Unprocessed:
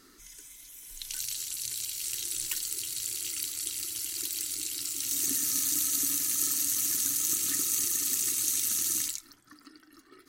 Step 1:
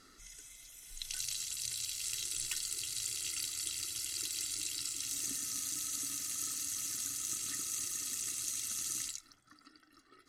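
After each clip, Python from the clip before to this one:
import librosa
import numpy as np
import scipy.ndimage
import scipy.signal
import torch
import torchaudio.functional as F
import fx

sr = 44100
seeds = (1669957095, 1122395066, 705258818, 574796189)

y = scipy.signal.sosfilt(scipy.signal.butter(2, 9200.0, 'lowpass', fs=sr, output='sos'), x)
y = y + 0.43 * np.pad(y, (int(1.5 * sr / 1000.0), 0))[:len(y)]
y = fx.rider(y, sr, range_db=3, speed_s=0.5)
y = F.gain(torch.from_numpy(y), -5.5).numpy()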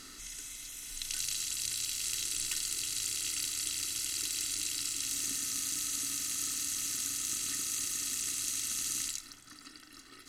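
y = fx.bin_compress(x, sr, power=0.6)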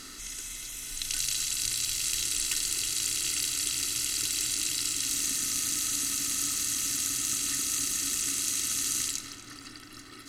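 y = fx.echo_filtered(x, sr, ms=242, feedback_pct=85, hz=2500.0, wet_db=-7.5)
y = F.gain(torch.from_numpy(y), 5.0).numpy()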